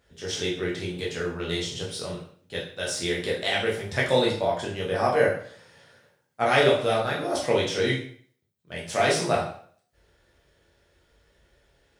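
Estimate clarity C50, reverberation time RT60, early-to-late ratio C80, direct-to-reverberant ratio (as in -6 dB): 5.5 dB, 0.50 s, 10.0 dB, -4.5 dB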